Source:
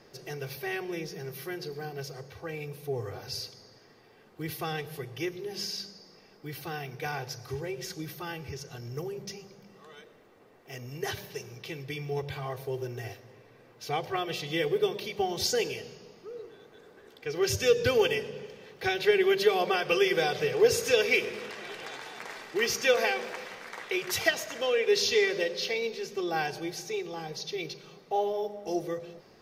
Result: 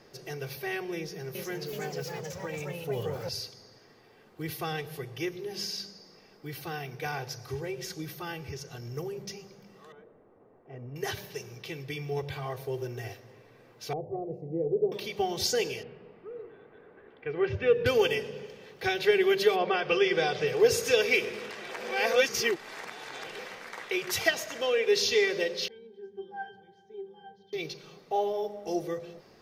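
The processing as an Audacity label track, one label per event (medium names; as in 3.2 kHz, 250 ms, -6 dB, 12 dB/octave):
0.970000	3.290000	ever faster or slower copies 379 ms, each echo +2 st, echoes 2
9.920000	10.960000	low-pass 1 kHz
13.930000	14.920000	inverse Chebyshev low-pass stop band from 1.3 kHz
15.830000	17.860000	low-pass 2.5 kHz 24 dB/octave
19.550000	20.460000	low-pass 2.8 kHz -> 7.2 kHz
21.710000	23.390000	reverse
25.680000	27.530000	pitch-class resonator G, decay 0.22 s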